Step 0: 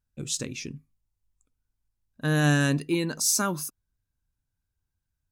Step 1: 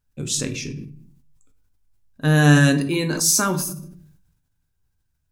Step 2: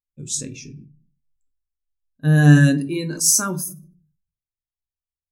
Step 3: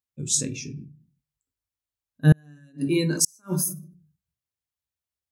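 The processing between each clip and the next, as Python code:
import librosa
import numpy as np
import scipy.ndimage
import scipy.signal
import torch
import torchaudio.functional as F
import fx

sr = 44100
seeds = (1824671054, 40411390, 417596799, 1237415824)

y1 = fx.room_shoebox(x, sr, seeds[0], volume_m3=45.0, walls='mixed', distance_m=0.34)
y1 = fx.sustainer(y1, sr, db_per_s=56.0)
y1 = y1 * 10.0 ** (5.0 / 20.0)
y2 = fx.high_shelf(y1, sr, hz=6100.0, db=10.0)
y2 = fx.spectral_expand(y2, sr, expansion=1.5)
y2 = y2 * 10.0 ** (-2.5 / 20.0)
y3 = scipy.signal.sosfilt(scipy.signal.butter(4, 60.0, 'highpass', fs=sr, output='sos'), y2)
y3 = fx.gate_flip(y3, sr, shuts_db=-8.0, range_db=-41)
y3 = y3 * 10.0 ** (2.5 / 20.0)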